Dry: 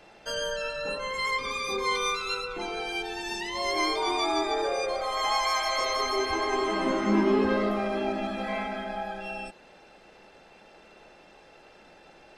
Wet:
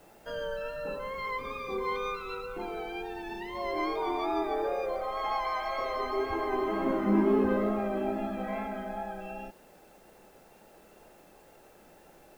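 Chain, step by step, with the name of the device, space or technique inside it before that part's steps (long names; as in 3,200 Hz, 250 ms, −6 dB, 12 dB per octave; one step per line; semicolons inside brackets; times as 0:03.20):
cassette deck with a dirty head (head-to-tape spacing loss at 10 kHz 40 dB; tape wow and flutter 29 cents; white noise bed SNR 33 dB)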